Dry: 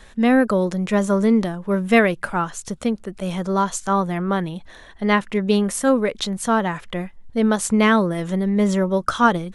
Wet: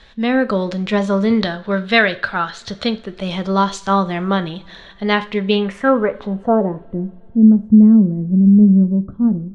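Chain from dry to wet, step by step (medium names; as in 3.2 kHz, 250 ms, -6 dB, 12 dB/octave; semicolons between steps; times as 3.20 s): 1.30–2.97 s: fifteen-band graphic EQ 100 Hz +10 dB, 630 Hz +4 dB, 1.6 kHz +10 dB, 4 kHz +11 dB; level rider gain up to 5.5 dB; low-pass sweep 4 kHz -> 220 Hz, 5.40–7.10 s; reverberation, pre-delay 3 ms, DRR 10.5 dB; trim -2 dB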